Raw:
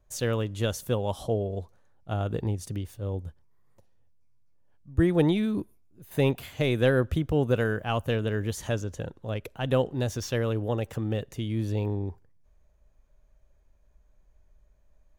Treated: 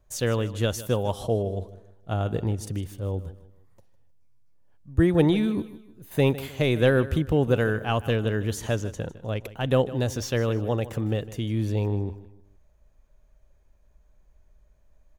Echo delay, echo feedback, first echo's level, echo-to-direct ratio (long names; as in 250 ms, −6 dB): 155 ms, 36%, −16.0 dB, −15.5 dB